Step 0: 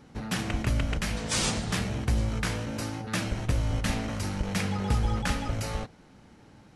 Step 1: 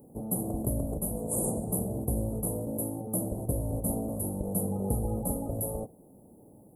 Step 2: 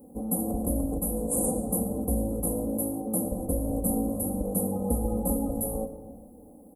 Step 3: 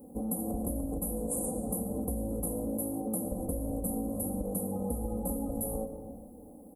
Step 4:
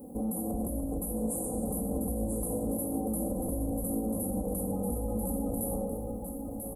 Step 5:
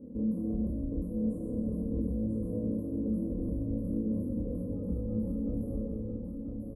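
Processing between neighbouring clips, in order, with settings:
inverse Chebyshev band-stop filter 1,600–5,600 Hz, stop band 60 dB; spectral tilt +3.5 dB per octave; level +7.5 dB
comb filter 3.9 ms, depth 98%; comb and all-pass reverb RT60 1.8 s, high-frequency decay 0.35×, pre-delay 55 ms, DRR 9.5 dB
downward compressor, threshold −30 dBFS, peak gain reduction 9 dB
brickwall limiter −29.5 dBFS, peak gain reduction 10.5 dB; single-tap delay 991 ms −6 dB; level +4.5 dB
moving average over 56 samples; double-tracking delay 28 ms −2 dB

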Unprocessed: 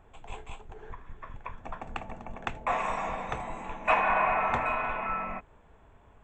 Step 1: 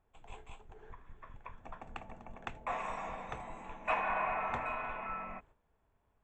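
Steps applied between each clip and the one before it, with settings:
noise gate −51 dBFS, range −10 dB
level −8.5 dB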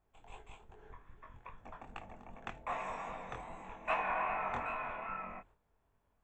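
chorus effect 2.5 Hz, delay 19 ms, depth 5.9 ms
level +1.5 dB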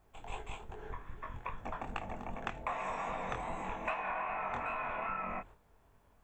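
downward compressor 16 to 1, threshold −44 dBFS, peak gain reduction 16 dB
level +10.5 dB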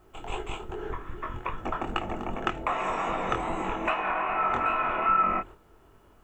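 hollow resonant body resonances 350/1,300/2,900 Hz, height 12 dB, ringing for 40 ms
level +7.5 dB

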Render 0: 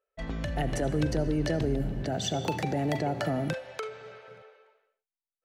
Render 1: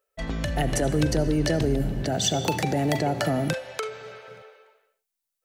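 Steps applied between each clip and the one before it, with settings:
high-shelf EQ 5,100 Hz +9.5 dB
level +4.5 dB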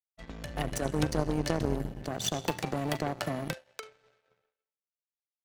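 power curve on the samples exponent 2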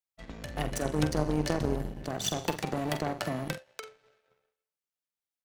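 double-tracking delay 46 ms −10.5 dB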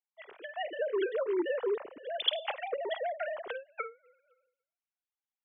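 three sine waves on the formant tracks
level −2.5 dB

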